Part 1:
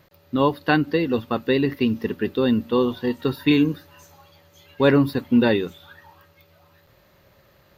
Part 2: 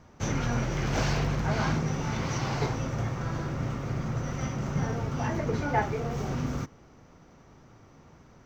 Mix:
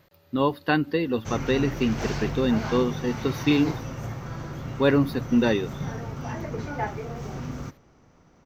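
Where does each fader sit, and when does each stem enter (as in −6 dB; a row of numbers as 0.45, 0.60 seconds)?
−3.5, −3.0 decibels; 0.00, 1.05 seconds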